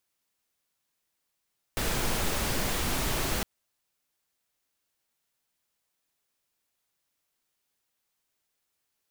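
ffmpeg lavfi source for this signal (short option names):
-f lavfi -i "anoisesrc=c=pink:a=0.193:d=1.66:r=44100:seed=1"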